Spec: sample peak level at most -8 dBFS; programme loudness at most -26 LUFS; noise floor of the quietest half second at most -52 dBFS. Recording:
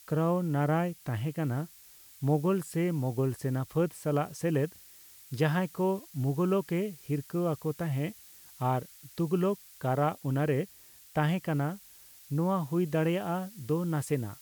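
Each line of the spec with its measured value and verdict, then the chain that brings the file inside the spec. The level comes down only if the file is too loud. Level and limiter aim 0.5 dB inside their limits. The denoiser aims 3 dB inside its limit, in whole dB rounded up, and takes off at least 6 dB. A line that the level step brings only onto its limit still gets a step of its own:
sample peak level -15.5 dBFS: OK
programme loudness -31.0 LUFS: OK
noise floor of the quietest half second -55 dBFS: OK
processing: none

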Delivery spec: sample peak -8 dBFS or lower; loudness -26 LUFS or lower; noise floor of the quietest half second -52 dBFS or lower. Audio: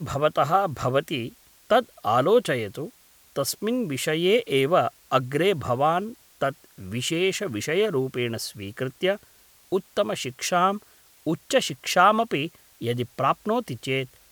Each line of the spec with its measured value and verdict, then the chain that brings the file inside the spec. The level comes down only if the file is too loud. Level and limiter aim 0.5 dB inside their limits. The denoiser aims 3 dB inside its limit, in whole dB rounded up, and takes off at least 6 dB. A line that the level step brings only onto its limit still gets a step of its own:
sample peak -5.0 dBFS: fail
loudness -24.5 LUFS: fail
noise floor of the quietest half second -56 dBFS: OK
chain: gain -2 dB; limiter -8.5 dBFS

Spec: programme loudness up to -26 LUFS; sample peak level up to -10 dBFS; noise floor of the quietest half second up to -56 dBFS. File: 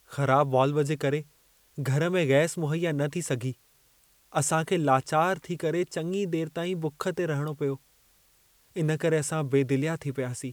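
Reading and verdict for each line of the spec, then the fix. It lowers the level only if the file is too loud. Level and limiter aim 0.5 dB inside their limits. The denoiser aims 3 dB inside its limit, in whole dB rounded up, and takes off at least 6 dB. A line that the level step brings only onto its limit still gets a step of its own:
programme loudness -27.5 LUFS: OK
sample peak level -8.5 dBFS: fail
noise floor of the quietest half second -63 dBFS: OK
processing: limiter -10.5 dBFS

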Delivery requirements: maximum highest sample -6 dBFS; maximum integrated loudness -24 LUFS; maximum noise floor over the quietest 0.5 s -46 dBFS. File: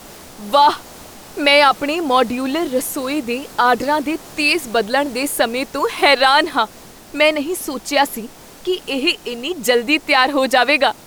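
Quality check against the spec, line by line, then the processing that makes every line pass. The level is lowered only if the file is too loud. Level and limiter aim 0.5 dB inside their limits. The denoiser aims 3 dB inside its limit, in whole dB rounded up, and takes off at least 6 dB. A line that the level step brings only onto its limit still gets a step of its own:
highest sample -2.5 dBFS: fail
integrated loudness -16.5 LUFS: fail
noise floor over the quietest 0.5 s -38 dBFS: fail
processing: denoiser 6 dB, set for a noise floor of -38 dBFS; gain -8 dB

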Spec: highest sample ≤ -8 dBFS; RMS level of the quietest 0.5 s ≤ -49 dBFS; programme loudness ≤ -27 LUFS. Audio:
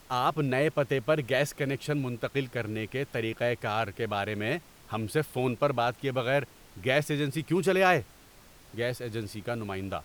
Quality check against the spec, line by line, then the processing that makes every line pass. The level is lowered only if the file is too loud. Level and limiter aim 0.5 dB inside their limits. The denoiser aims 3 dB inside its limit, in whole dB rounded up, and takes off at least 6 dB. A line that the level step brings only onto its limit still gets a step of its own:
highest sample -10.0 dBFS: OK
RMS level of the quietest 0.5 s -54 dBFS: OK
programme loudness -29.5 LUFS: OK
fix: none

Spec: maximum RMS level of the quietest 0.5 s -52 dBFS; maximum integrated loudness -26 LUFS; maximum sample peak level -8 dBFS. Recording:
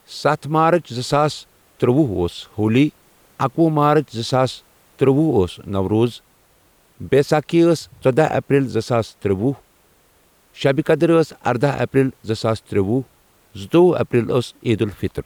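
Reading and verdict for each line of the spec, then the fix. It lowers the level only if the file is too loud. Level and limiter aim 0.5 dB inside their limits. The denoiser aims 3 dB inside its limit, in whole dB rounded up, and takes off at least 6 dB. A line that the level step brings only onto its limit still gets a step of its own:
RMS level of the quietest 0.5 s -56 dBFS: OK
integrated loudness -18.5 LUFS: fail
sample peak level -5.0 dBFS: fail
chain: gain -8 dB

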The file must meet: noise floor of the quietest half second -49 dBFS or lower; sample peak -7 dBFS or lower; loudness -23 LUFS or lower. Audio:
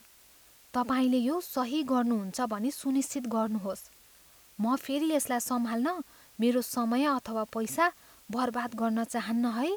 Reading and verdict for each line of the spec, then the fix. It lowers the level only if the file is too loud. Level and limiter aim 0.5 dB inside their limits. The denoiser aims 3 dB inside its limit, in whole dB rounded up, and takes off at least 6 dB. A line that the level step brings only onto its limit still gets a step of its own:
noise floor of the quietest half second -58 dBFS: OK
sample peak -14.5 dBFS: OK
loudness -30.0 LUFS: OK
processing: none

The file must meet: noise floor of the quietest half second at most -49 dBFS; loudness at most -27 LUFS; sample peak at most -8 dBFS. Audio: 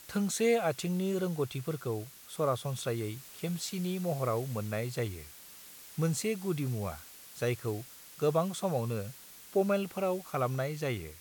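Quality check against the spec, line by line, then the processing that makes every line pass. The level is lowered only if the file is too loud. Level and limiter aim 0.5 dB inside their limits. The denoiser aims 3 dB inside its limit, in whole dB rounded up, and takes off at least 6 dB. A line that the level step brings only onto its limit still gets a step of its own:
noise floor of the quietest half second -51 dBFS: OK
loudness -33.0 LUFS: OK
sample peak -16.5 dBFS: OK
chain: none

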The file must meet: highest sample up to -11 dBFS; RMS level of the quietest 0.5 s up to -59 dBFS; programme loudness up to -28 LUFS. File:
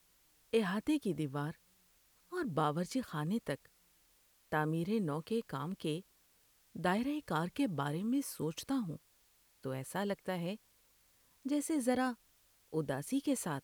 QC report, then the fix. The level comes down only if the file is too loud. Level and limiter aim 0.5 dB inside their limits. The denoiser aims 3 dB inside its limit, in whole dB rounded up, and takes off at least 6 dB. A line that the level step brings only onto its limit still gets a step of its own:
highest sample -19.0 dBFS: OK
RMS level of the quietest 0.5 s -70 dBFS: OK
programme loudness -37.0 LUFS: OK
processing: none

